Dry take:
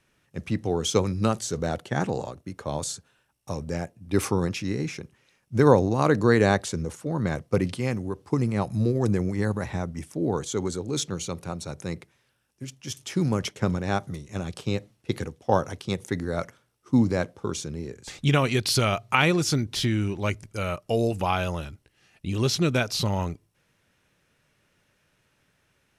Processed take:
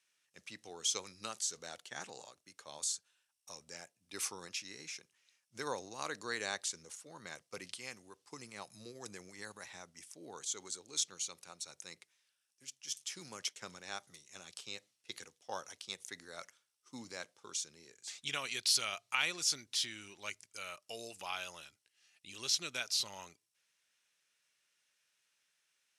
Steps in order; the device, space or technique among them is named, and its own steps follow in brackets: piezo pickup straight into a mixer (low-pass 7.5 kHz 12 dB/octave; differentiator)

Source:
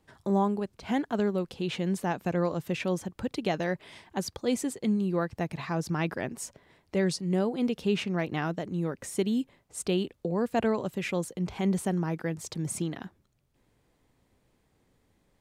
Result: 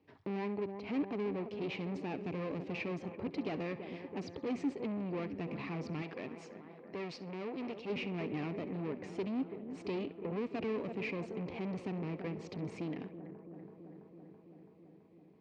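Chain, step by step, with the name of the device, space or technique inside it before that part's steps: analogue delay pedal into a guitar amplifier (bucket-brigade echo 331 ms, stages 4096, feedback 77%, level -16 dB; valve stage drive 35 dB, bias 0.65; cabinet simulation 98–4400 Hz, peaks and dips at 100 Hz +5 dB, 280 Hz +9 dB, 430 Hz +7 dB, 1.5 kHz -8 dB, 2.4 kHz +7 dB, 3.5 kHz -6 dB); 6.02–7.90 s: bass shelf 330 Hz -8.5 dB; band-passed feedback delay 66 ms, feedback 42%, band-pass 2.5 kHz, level -15 dB; trim -2.5 dB

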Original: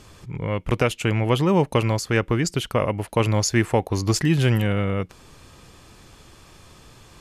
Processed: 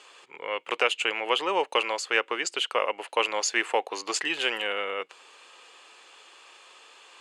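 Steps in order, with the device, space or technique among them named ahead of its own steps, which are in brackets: phone speaker on a table (cabinet simulation 490–8300 Hz, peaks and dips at 630 Hz -6 dB, 2.8 kHz +7 dB, 5.6 kHz -8 dB)

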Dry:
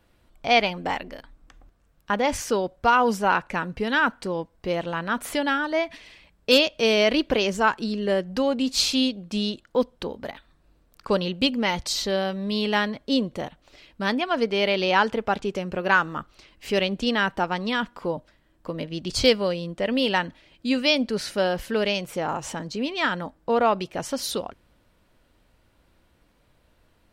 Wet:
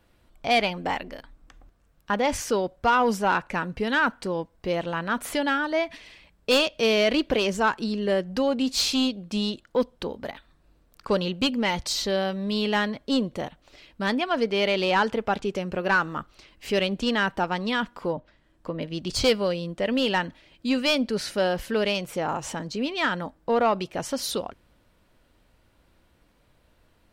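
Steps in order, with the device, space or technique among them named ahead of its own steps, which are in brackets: 18.12–18.82 s: low-pass that closes with the level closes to 3 kHz, closed at -33 dBFS; saturation between pre-emphasis and de-emphasis (treble shelf 3.6 kHz +8 dB; saturation -11.5 dBFS, distortion -16 dB; treble shelf 3.6 kHz -8 dB)

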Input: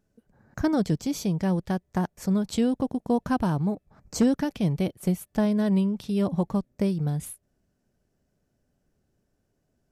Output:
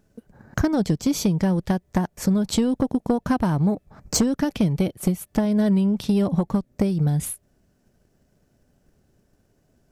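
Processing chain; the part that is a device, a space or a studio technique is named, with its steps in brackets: drum-bus smash (transient shaper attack +6 dB, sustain 0 dB; compression 6:1, threshold -24 dBFS, peak gain reduction 12 dB; saturation -20 dBFS, distortion -17 dB); trim +9 dB

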